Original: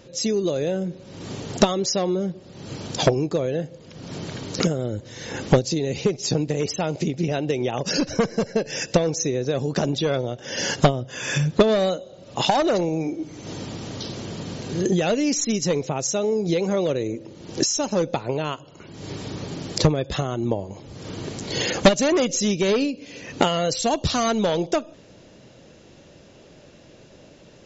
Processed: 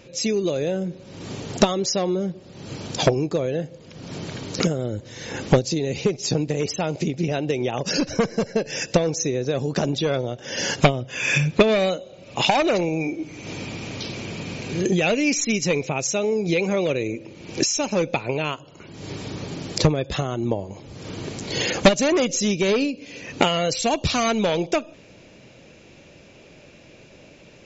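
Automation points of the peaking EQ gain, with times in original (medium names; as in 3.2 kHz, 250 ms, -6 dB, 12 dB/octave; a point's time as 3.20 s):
peaking EQ 2.4 kHz 0.32 oct
+10 dB
from 0.56 s +3 dB
from 10.81 s +14.5 dB
from 18.51 s +4.5 dB
from 23.41 s +11.5 dB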